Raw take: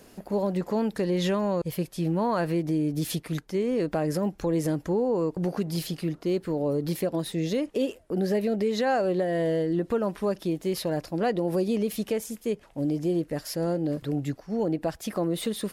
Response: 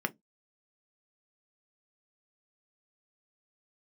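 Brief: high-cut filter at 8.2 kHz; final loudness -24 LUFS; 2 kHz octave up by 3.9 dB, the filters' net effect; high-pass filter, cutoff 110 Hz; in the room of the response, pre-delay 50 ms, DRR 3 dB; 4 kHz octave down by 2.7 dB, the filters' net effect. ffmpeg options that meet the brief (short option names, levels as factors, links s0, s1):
-filter_complex "[0:a]highpass=110,lowpass=8200,equalizer=f=2000:t=o:g=6,equalizer=f=4000:t=o:g=-5,asplit=2[s0][s1];[1:a]atrim=start_sample=2205,adelay=50[s2];[s1][s2]afir=irnorm=-1:irlink=0,volume=0.355[s3];[s0][s3]amix=inputs=2:normalize=0,volume=1.19"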